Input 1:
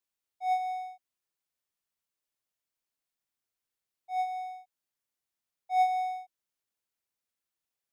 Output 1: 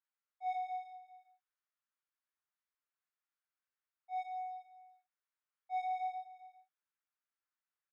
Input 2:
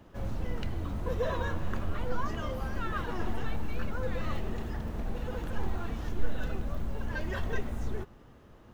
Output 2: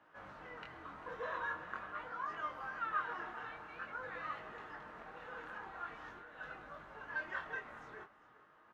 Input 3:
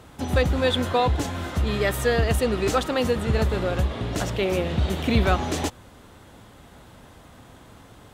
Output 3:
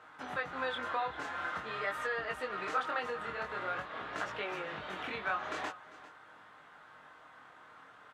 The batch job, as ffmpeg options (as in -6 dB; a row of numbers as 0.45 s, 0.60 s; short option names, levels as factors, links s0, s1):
-af "aecho=1:1:6.5:0.31,acompressor=threshold=0.0708:ratio=6,bandpass=f=1400:t=q:w=1.9:csg=0,flanger=delay=19:depth=6.9:speed=0.45,aecho=1:1:397:0.133,volume=1.58"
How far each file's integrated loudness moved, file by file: -9.0 LU, -8.0 LU, -13.0 LU